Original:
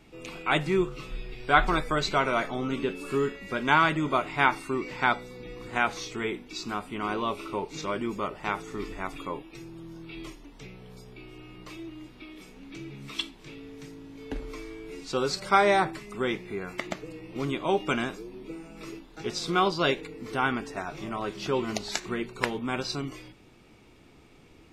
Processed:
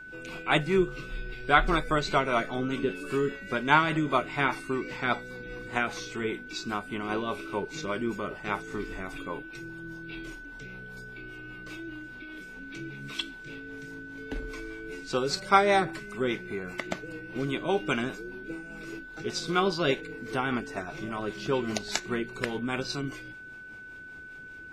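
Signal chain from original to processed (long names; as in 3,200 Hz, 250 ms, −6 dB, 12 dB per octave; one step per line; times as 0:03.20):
rotating-speaker cabinet horn 5 Hz
steady tone 1,500 Hz −44 dBFS
level +1.5 dB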